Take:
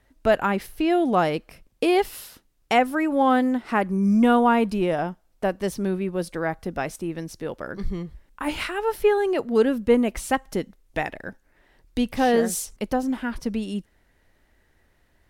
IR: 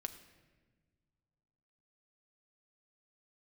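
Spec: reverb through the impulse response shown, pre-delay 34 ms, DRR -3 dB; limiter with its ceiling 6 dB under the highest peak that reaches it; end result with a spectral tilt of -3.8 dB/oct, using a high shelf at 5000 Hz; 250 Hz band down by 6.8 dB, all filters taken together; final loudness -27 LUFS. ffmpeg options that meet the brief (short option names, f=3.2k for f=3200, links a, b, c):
-filter_complex "[0:a]equalizer=f=250:t=o:g=-8.5,highshelf=f=5k:g=8,alimiter=limit=-14dB:level=0:latency=1,asplit=2[a][b];[1:a]atrim=start_sample=2205,adelay=34[c];[b][c]afir=irnorm=-1:irlink=0,volume=5.5dB[d];[a][d]amix=inputs=2:normalize=0,volume=-4.5dB"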